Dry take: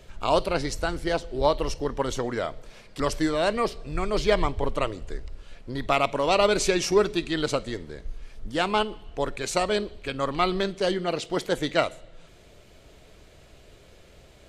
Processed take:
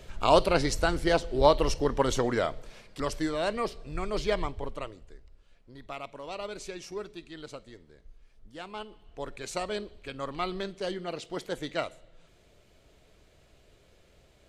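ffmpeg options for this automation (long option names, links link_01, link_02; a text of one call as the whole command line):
ffmpeg -i in.wav -af "volume=10dB,afade=type=out:start_time=2.35:duration=0.68:silence=0.446684,afade=type=out:start_time=4.18:duration=0.98:silence=0.266073,afade=type=in:start_time=8.73:duration=0.68:silence=0.375837" out.wav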